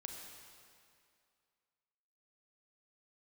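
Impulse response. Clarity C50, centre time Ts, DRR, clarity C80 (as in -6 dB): 2.5 dB, 83 ms, 1.5 dB, 3.5 dB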